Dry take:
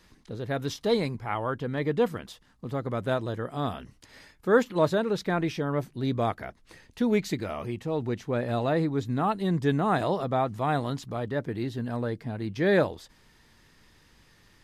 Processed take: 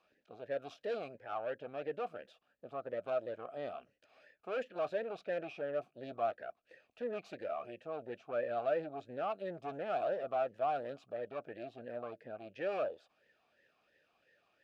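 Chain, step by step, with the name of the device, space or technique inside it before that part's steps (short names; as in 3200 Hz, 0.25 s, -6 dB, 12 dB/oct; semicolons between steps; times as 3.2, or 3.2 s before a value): talk box (tube stage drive 27 dB, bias 0.7; vowel sweep a-e 2.9 Hz); gain +5.5 dB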